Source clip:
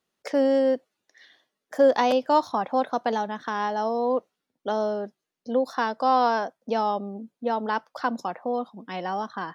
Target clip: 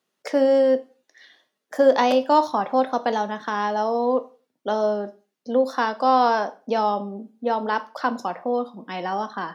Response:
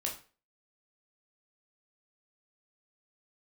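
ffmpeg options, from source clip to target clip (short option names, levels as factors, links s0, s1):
-filter_complex "[0:a]highpass=140,asplit=2[s0][s1];[1:a]atrim=start_sample=2205,afade=t=out:st=0.34:d=0.01,atrim=end_sample=15435[s2];[s1][s2]afir=irnorm=-1:irlink=0,volume=0.422[s3];[s0][s3]amix=inputs=2:normalize=0"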